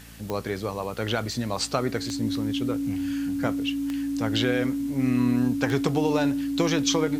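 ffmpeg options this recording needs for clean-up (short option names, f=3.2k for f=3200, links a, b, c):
-af "adeclick=t=4,bandreject=f=56.6:t=h:w=4,bandreject=f=113.2:t=h:w=4,bandreject=f=169.8:t=h:w=4,bandreject=f=226.4:t=h:w=4,bandreject=f=283:t=h:w=4,bandreject=f=280:w=30,afwtdn=0.0032"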